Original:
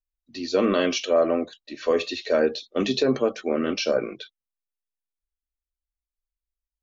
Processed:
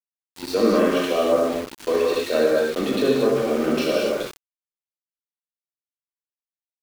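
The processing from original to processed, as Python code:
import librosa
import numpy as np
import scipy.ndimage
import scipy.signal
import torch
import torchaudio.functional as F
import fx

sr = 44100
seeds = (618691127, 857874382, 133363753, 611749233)

y = fx.env_lowpass_down(x, sr, base_hz=2000.0, full_db=-19.0)
y = fx.rev_gated(y, sr, seeds[0], gate_ms=290, shape='flat', drr_db=-4.0)
y = np.where(np.abs(y) >= 10.0 ** (-28.0 / 20.0), y, 0.0)
y = y * 10.0 ** (-1.5 / 20.0)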